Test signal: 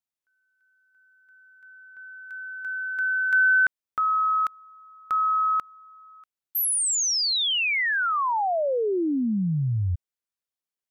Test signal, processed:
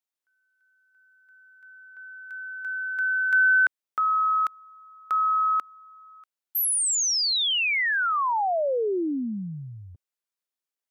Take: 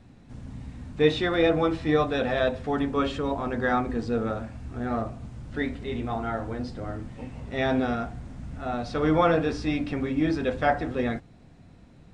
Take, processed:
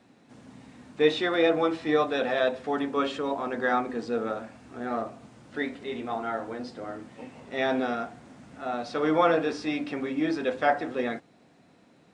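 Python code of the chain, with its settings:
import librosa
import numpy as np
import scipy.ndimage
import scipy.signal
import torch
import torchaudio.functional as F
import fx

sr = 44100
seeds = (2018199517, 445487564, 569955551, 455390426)

y = scipy.signal.sosfilt(scipy.signal.butter(2, 280.0, 'highpass', fs=sr, output='sos'), x)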